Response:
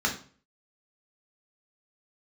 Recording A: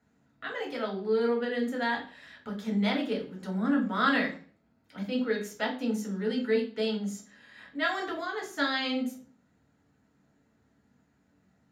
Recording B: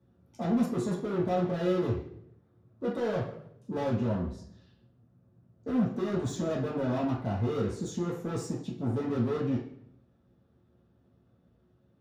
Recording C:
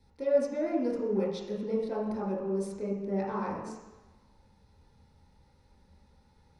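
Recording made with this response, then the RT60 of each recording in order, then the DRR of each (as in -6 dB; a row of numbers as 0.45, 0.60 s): A; 0.45 s, not exponential, not exponential; -0.5, -6.0, -5.0 dB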